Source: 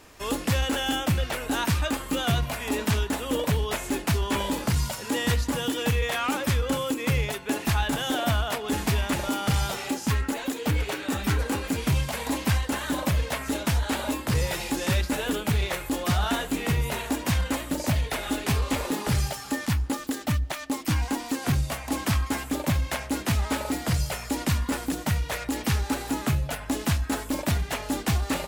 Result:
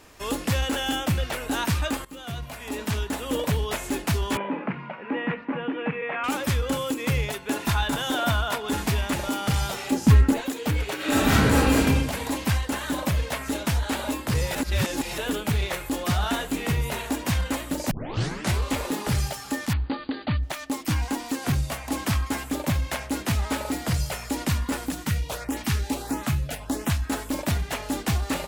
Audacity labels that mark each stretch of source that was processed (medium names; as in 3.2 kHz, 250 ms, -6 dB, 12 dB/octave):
2.050000	3.350000	fade in, from -17 dB
4.370000	6.240000	Chebyshev band-pass 160–2500 Hz, order 4
7.510000	8.820000	small resonant body resonances 1/1.4/3.6 kHz, height 9 dB
9.920000	10.410000	bass shelf 470 Hz +11.5 dB
10.960000	11.790000	reverb throw, RT60 1.2 s, DRR -9 dB
14.550000	15.180000	reverse
17.910000	17.910000	tape start 0.70 s
19.730000	20.430000	brick-wall FIR low-pass 4.8 kHz
24.900000	27.050000	LFO notch saw up 1.5 Hz 330–5100 Hz